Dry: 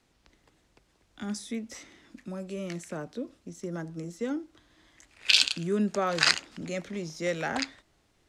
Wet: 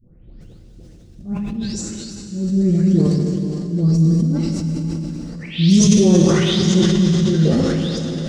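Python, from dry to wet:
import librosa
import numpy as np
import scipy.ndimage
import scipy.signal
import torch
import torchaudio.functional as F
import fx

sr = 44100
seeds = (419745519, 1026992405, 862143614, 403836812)

p1 = fx.spec_delay(x, sr, highs='late', ms=413)
p2 = fx.formant_shift(p1, sr, semitones=-5)
p3 = fx.bass_treble(p2, sr, bass_db=14, treble_db=13)
p4 = fx.auto_swell(p3, sr, attack_ms=254.0)
p5 = fx.rider(p4, sr, range_db=3, speed_s=2.0)
p6 = p4 + (p5 * librosa.db_to_amplitude(2.0))
p7 = fx.low_shelf_res(p6, sr, hz=690.0, db=11.0, q=1.5)
p8 = p7 + fx.echo_diffused(p7, sr, ms=483, feedback_pct=54, wet_db=-15.5, dry=0)
p9 = fx.rev_plate(p8, sr, seeds[0], rt60_s=4.1, hf_ratio=0.9, predelay_ms=0, drr_db=0.5)
p10 = fx.sustainer(p9, sr, db_per_s=20.0)
y = p10 * librosa.db_to_amplitude(-10.0)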